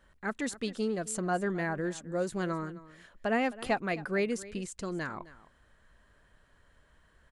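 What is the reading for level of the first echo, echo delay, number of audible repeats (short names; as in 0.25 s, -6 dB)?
-18.0 dB, 0.263 s, 1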